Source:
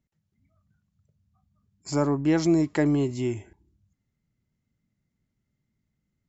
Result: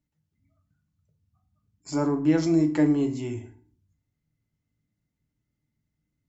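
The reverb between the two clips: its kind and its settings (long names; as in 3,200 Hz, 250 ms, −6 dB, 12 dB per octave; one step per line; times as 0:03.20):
feedback delay network reverb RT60 0.45 s, low-frequency decay 1.3×, high-frequency decay 0.75×, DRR 4 dB
level −4 dB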